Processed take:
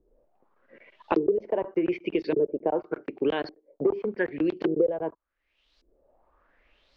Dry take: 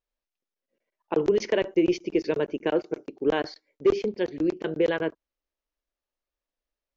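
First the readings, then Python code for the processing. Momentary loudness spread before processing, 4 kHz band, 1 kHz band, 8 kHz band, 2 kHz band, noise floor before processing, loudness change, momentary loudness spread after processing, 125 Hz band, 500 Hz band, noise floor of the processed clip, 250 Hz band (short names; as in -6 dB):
6 LU, -6.5 dB, +1.5 dB, n/a, -2.5 dB, under -85 dBFS, -1.5 dB, 7 LU, -3.0 dB, -1.5 dB, -76 dBFS, -1.0 dB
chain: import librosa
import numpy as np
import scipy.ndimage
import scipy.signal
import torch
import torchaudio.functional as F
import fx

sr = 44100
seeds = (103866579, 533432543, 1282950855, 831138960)

y = fx.high_shelf(x, sr, hz=4500.0, db=-5.5)
y = fx.filter_lfo_lowpass(y, sr, shape='saw_up', hz=0.86, low_hz=330.0, high_hz=4800.0, q=4.2)
y = fx.band_squash(y, sr, depth_pct=100)
y = y * librosa.db_to_amplitude(-6.0)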